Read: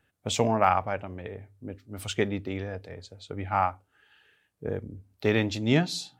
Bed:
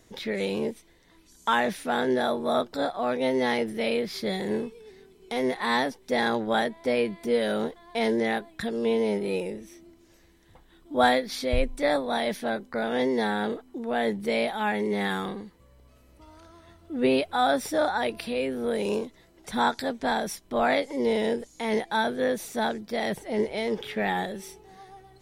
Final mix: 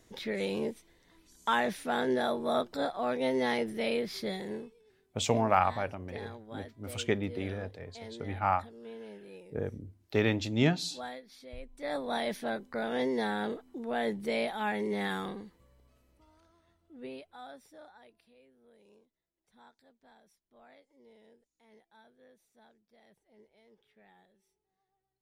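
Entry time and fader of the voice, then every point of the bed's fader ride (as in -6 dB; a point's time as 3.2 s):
4.90 s, -3.0 dB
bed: 4.19 s -4.5 dB
5.12 s -21 dB
11.65 s -21 dB
12.05 s -5.5 dB
15.54 s -5.5 dB
18.49 s -35 dB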